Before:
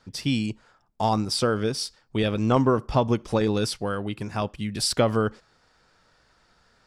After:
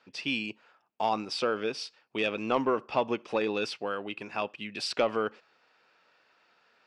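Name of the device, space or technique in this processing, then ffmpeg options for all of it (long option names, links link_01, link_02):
intercom: -af "highpass=340,lowpass=4100,equalizer=frequency=2600:width_type=o:width=0.31:gain=10.5,asoftclip=type=tanh:threshold=-10.5dB,volume=-3dB"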